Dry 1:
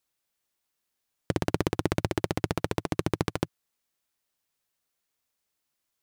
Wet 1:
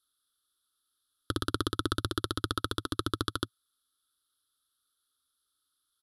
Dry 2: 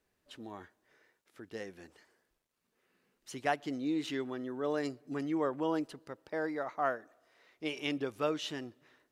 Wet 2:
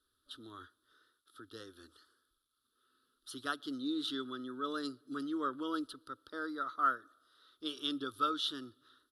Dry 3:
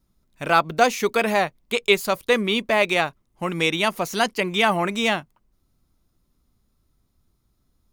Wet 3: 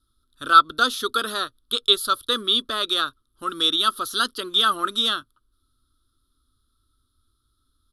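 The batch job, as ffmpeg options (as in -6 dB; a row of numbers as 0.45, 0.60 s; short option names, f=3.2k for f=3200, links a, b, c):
-af "firequalizer=gain_entry='entry(110,0);entry(170,-20);entry(260,1);entry(800,-19);entry(1300,13);entry(2200,-24);entry(3400,13);entry(6700,-7);entry(11000,13);entry(15000,-23)':delay=0.05:min_phase=1,volume=-2.5dB"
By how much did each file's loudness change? -3.0, -1.5, +1.0 LU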